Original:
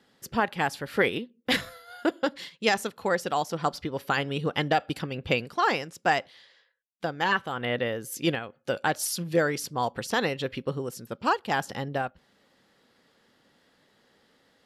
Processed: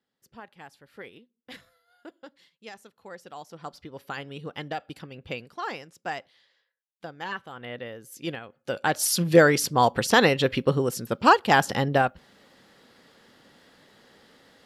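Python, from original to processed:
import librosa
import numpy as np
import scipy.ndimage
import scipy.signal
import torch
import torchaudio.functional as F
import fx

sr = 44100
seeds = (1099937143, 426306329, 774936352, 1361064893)

y = fx.gain(x, sr, db=fx.line((2.83, -19.5), (3.97, -9.0), (8.09, -9.0), (8.75, -1.0), (9.21, 8.0)))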